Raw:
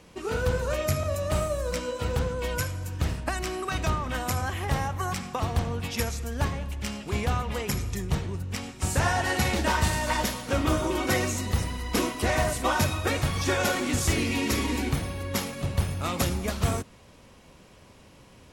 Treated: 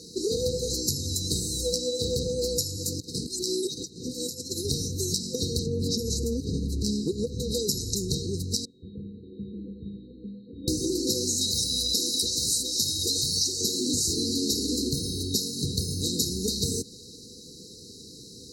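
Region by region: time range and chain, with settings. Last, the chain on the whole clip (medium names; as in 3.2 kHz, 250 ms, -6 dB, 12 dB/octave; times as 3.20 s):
2.77–4.65 s: compressor with a negative ratio -34 dBFS, ratio -0.5 + high-pass 130 Hz
5.66–7.40 s: tilt shelf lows +6 dB, about 1.3 kHz + hum notches 60/120/180/240 Hz + compressor with a negative ratio -28 dBFS
8.65–10.68 s: one-bit delta coder 16 kbps, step -38.5 dBFS + feedback comb 200 Hz, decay 0.63 s, harmonics odd, mix 90%
11.41–13.61 s: resonant low shelf 660 Hz -8 dB, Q 1.5 + hard clipper -17.5 dBFS + level flattener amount 70%
whole clip: FFT band-reject 510–3800 Hz; frequency weighting D; compression 5:1, threshold -33 dBFS; trim +8.5 dB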